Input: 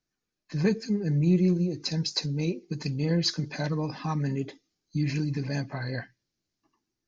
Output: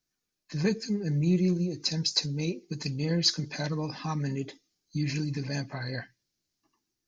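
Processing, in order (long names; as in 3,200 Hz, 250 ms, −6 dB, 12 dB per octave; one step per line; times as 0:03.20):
high-shelf EQ 3,500 Hz +8.5 dB
level −2.5 dB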